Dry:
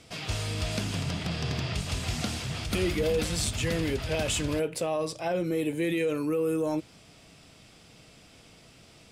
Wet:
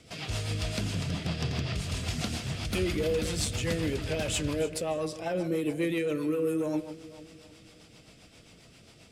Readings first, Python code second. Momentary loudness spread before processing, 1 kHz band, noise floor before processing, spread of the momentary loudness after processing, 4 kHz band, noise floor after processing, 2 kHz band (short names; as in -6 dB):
5 LU, -3.0 dB, -55 dBFS, 5 LU, -2.0 dB, -56 dBFS, -2.0 dB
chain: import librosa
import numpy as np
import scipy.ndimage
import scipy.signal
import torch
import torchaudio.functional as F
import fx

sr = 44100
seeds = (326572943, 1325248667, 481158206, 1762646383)

y = fx.cheby_harmonics(x, sr, harmonics=(5,), levels_db=(-31,), full_scale_db=-19.0)
y = fx.echo_alternate(y, sr, ms=153, hz=1800.0, feedback_pct=68, wet_db=-13)
y = fx.rotary(y, sr, hz=7.5)